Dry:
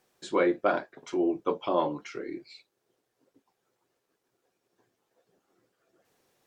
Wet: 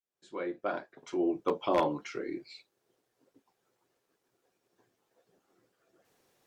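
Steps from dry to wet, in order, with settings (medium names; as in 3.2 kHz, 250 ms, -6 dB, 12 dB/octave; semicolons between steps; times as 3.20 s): fade-in on the opening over 1.72 s; wavefolder -17.5 dBFS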